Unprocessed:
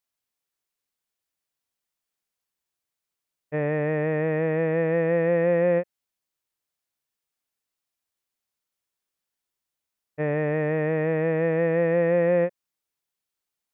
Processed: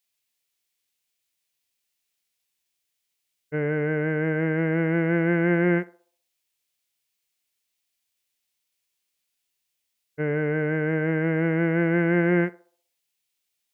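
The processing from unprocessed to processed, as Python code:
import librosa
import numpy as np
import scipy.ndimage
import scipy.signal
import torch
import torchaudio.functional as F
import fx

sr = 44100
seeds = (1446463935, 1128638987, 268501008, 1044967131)

y = fx.formant_shift(x, sr, semitones=-3)
y = fx.high_shelf_res(y, sr, hz=1800.0, db=7.0, q=1.5)
y = fx.echo_banded(y, sr, ms=63, feedback_pct=48, hz=670.0, wet_db=-16)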